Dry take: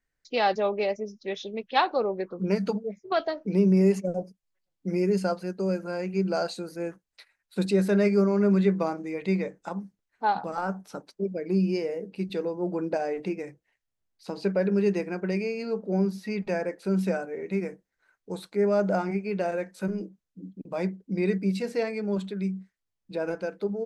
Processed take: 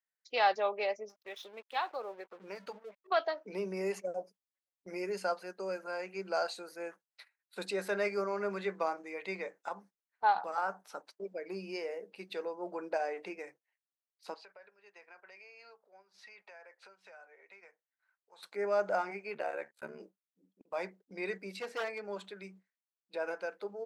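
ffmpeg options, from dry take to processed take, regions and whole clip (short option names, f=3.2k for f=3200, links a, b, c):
-filter_complex "[0:a]asettb=1/sr,asplit=3[a][b][c];[a]atrim=end=1.094[d];[b]atrim=start=1.09:end=3.07,asetpts=PTS-STARTPTS,afade=t=in:d=0.004:c=qsin,afade=t=out:st=1.976:d=0.004:c=qsin,aeval=exprs='sgn(val(0))*max(abs(val(0))-0.00335,0)':c=same,acompressor=threshold=-41dB:ratio=1.5:attack=3.2:release=140:knee=1:detection=peak[e];[c]atrim=start=3.066[f];[d][e]acrossfade=d=0.004:c1=hsin:c2=qsin[g];[g][f]acrossfade=d=0.004:c1=qsin:c2=hsin,asettb=1/sr,asplit=3[h][i][j];[h]atrim=end=14.344[k];[i]atrim=start=14.34:end=18.43,asetpts=PTS-STARTPTS,afade=t=in:d=0.004:c=qsin,afade=t=out:st=4.086:d=0.004:c=qsin,acrossover=split=580 7100:gain=0.126 1 0.0891[l][m][n];[l][m][n]amix=inputs=3:normalize=0,acompressor=threshold=-48dB:ratio=5:attack=3.2:release=140:knee=1:detection=peak[o];[j]atrim=start=18.426[p];[k][o]acrossfade=d=0.004:c1=hsin:c2=qsin[q];[q][p]acrossfade=d=0.004:c1=qsin:c2=hsin,asettb=1/sr,asplit=3[r][s][t];[r]atrim=end=19.344[u];[s]atrim=start=19.34:end=20,asetpts=PTS-STARTPTS,afade=t=in:d=0.004:c=qsin,afade=t=out:st=0.656:d=0.004:c=qsin,agate=range=-25dB:threshold=-50dB:ratio=16:release=100:detection=peak,equalizer=f=5.7k:w=3:g=-7.5,aeval=exprs='val(0)*sin(2*PI*35*n/s)':c=same[v];[t]atrim=start=19.996[w];[u][v]acrossfade=d=0.004:c1=hsin:c2=qsin[x];[x][w]acrossfade=d=0.004:c1=qsin:c2=hsin,asettb=1/sr,asplit=3[y][z][aa];[y]atrim=end=21.564[ab];[z]atrim=start=21.56:end=22.05,asetpts=PTS-STARTPTS,afade=t=in:d=0.004:c=qsin,afade=t=out:st=0.486:d=0.004:c=qsin,aeval=exprs='0.0631*(abs(mod(val(0)/0.0631+3,4)-2)-1)':c=same,highshelf=f=7k:g=-7[ac];[aa]atrim=start=22.046[ad];[ab][ac]acrossfade=d=0.004:c1=hsin:c2=qsin[ae];[ae][ad]acrossfade=d=0.004:c1=qsin:c2=hsin,highpass=740,agate=range=-10dB:threshold=-56dB:ratio=16:detection=peak,equalizer=f=7.1k:w=0.39:g=-5.5"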